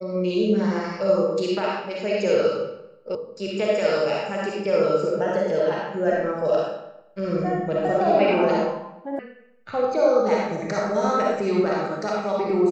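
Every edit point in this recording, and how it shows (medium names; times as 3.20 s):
3.15 s: sound stops dead
9.19 s: sound stops dead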